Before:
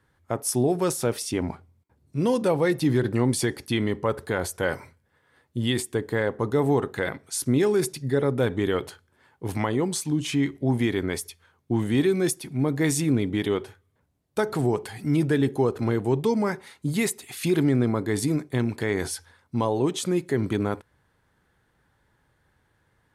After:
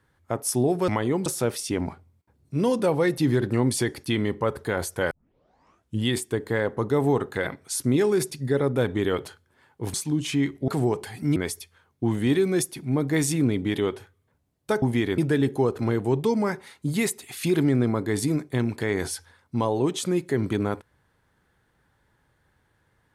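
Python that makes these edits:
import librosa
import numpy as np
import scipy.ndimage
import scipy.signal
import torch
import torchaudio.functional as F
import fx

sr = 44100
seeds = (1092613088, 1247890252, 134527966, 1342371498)

y = fx.edit(x, sr, fx.tape_start(start_s=4.73, length_s=0.93),
    fx.move(start_s=9.56, length_s=0.38, to_s=0.88),
    fx.swap(start_s=10.68, length_s=0.36, other_s=14.5, other_length_s=0.68), tone=tone)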